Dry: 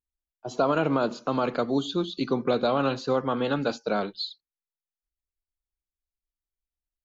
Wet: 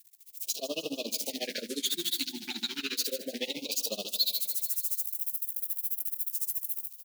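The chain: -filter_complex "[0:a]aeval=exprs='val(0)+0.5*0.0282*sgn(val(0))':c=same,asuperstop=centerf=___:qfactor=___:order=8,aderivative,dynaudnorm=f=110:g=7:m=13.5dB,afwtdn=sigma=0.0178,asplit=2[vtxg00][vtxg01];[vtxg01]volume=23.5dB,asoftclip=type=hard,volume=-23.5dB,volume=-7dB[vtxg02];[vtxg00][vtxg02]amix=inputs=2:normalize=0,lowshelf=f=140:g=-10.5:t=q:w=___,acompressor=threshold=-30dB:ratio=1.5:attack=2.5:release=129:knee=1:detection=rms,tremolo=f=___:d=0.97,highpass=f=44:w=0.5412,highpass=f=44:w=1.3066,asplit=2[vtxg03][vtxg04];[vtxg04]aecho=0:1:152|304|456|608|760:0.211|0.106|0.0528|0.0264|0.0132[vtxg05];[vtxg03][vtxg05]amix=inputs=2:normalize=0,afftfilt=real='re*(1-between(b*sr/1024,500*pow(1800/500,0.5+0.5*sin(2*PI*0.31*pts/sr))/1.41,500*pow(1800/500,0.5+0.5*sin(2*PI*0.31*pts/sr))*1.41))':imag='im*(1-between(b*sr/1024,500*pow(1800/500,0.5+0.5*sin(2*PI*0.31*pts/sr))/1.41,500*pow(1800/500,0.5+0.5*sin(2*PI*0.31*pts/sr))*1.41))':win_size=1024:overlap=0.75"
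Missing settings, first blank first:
1000, 1.1, 3, 14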